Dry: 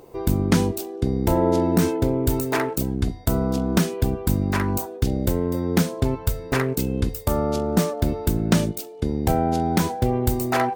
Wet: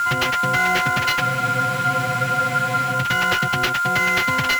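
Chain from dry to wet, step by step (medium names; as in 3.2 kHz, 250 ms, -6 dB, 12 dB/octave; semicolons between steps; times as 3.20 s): partials quantised in pitch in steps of 6 st; speed mistake 33 rpm record played at 78 rpm; whistle 1.4 kHz -24 dBFS; sample-rate reducer 8.8 kHz, jitter 20%; graphic EQ 125/250/500/1000/4000/8000 Hz +10/-6/-10/-6/-4/-6 dB; compression, threshold -22 dBFS, peak gain reduction 7 dB; overdrive pedal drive 18 dB, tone 2.7 kHz, clips at -8.5 dBFS; spectral freeze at 1.22 s, 1.72 s; trim +1.5 dB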